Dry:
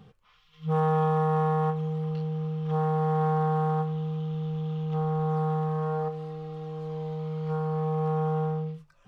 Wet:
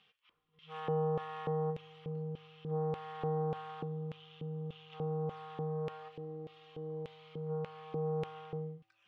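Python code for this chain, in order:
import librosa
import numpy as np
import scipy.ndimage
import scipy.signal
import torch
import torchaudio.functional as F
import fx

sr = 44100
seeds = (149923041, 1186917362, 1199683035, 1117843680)

y = fx.filter_lfo_bandpass(x, sr, shape='square', hz=1.7, low_hz=320.0, high_hz=2800.0, q=2.5)
y = fx.comb_fb(y, sr, f0_hz=110.0, decay_s=1.4, harmonics='odd', damping=0.0, mix_pct=50)
y = y * 10.0 ** (8.0 / 20.0)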